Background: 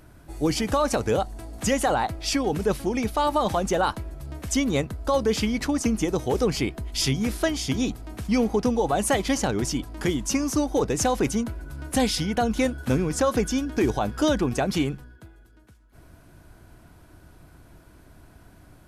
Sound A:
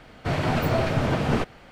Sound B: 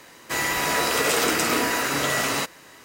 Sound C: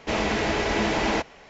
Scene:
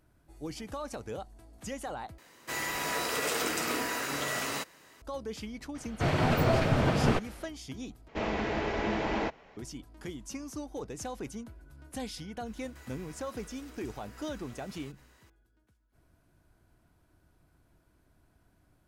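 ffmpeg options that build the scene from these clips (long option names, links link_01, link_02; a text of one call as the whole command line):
ffmpeg -i bed.wav -i cue0.wav -i cue1.wav -i cue2.wav -filter_complex "[2:a]asplit=2[link_01][link_02];[0:a]volume=-16dB[link_03];[3:a]aemphasis=mode=reproduction:type=75fm[link_04];[link_02]acompressor=threshold=-37dB:ratio=6:attack=3.2:release=140:knee=1:detection=peak[link_05];[link_03]asplit=3[link_06][link_07][link_08];[link_06]atrim=end=2.184[link_09];[link_01]atrim=end=2.84,asetpts=PTS-STARTPTS,volume=-9.5dB[link_10];[link_07]atrim=start=5.016:end=8.084[link_11];[link_04]atrim=end=1.49,asetpts=PTS-STARTPTS,volume=-7dB[link_12];[link_08]atrim=start=9.566[link_13];[1:a]atrim=end=1.71,asetpts=PTS-STARTPTS,volume=-2.5dB,afade=type=in:duration=0.004:curve=hsin,afade=type=out:start_time=1.706:duration=0.004:curve=hsin,adelay=5750[link_14];[link_05]atrim=end=2.84,asetpts=PTS-STARTPTS,volume=-16.5dB,afade=type=in:duration=0.004:curve=hsin,afade=type=out:start_time=2.836:duration=0.004:curve=hsin,adelay=12460[link_15];[link_09][link_10]acrossfade=duration=0.004:curve1=hsin:curve2=hsin[link_16];[link_16][link_11]acrossfade=duration=0.004:curve1=hsin:curve2=hsin[link_17];[link_17][link_12]acrossfade=duration=0.004:curve1=hsin:curve2=hsin[link_18];[link_18][link_13]acrossfade=duration=0.004:curve1=hsin:curve2=hsin[link_19];[link_19][link_14][link_15]amix=inputs=3:normalize=0" out.wav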